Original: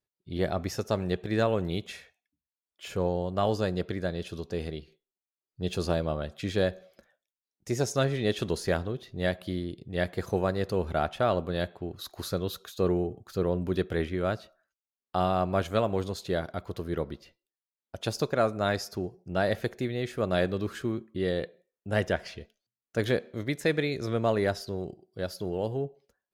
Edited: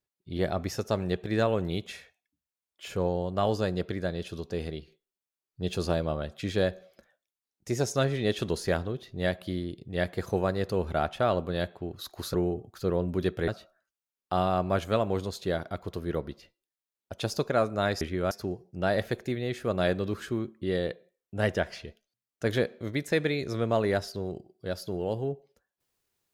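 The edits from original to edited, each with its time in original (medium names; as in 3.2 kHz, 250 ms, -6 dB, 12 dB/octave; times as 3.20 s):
12.34–12.87 s: delete
14.01–14.31 s: move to 18.84 s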